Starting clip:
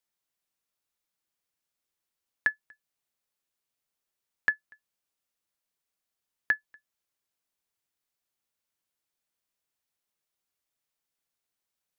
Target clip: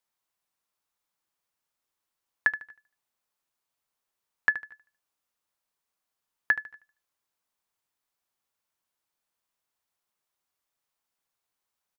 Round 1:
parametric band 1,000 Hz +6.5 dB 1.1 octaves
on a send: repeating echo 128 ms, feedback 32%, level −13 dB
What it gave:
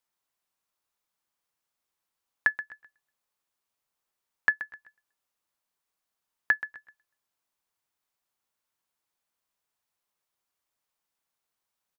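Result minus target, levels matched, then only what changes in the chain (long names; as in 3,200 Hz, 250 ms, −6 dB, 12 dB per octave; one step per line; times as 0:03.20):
echo 53 ms late
change: repeating echo 75 ms, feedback 32%, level −13 dB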